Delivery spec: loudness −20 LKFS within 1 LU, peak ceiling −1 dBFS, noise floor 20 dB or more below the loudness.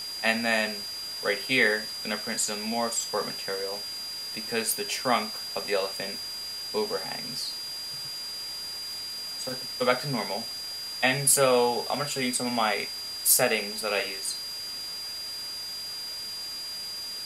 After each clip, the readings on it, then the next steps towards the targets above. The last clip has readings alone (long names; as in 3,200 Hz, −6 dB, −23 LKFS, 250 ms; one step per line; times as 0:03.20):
interfering tone 4,800 Hz; level of the tone −34 dBFS; background noise floor −36 dBFS; target noise floor −48 dBFS; integrated loudness −27.5 LKFS; sample peak −6.5 dBFS; target loudness −20.0 LKFS
→ notch filter 4,800 Hz, Q 30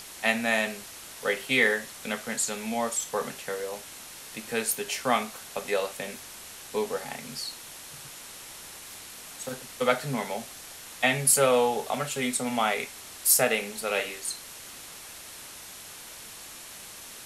interfering tone none found; background noise floor −44 dBFS; target noise floor −48 dBFS
→ noise reduction from a noise print 6 dB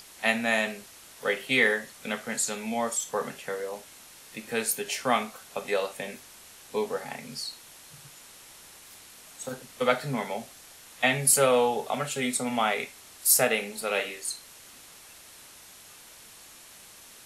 background noise floor −50 dBFS; integrated loudness −27.5 LKFS; sample peak −7.0 dBFS; target loudness −20.0 LKFS
→ level +7.5 dB
brickwall limiter −1 dBFS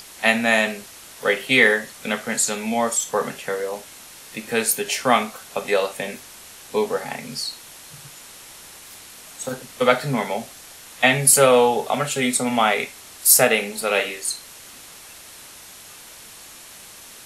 integrated loudness −20.0 LKFS; sample peak −1.0 dBFS; background noise floor −43 dBFS